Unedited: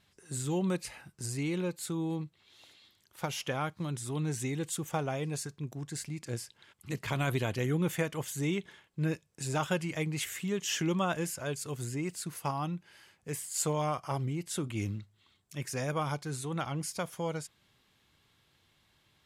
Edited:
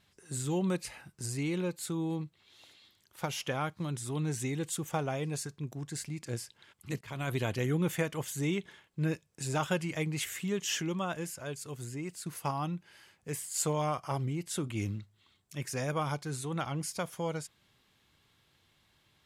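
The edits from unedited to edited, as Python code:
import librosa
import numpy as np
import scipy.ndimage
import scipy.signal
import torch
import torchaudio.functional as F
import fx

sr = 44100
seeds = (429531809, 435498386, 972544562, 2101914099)

y = fx.edit(x, sr, fx.fade_in_from(start_s=7.01, length_s=0.44, floor_db=-16.0),
    fx.clip_gain(start_s=10.81, length_s=1.45, db=-4.0), tone=tone)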